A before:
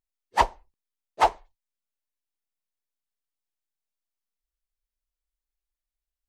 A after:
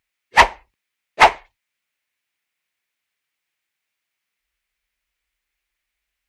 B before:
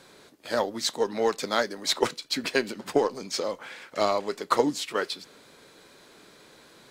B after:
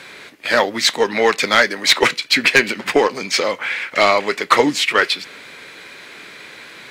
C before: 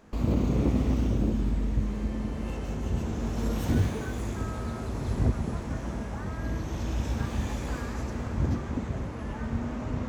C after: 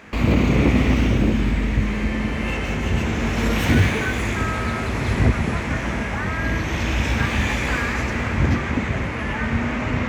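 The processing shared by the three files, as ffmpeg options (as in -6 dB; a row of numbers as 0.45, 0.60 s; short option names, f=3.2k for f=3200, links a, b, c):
-af "highpass=48,equalizer=f=2.2k:w=1.1:g=15,asoftclip=type=tanh:threshold=-10.5dB,volume=8.5dB"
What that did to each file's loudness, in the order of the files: +10.5, +12.0, +9.0 LU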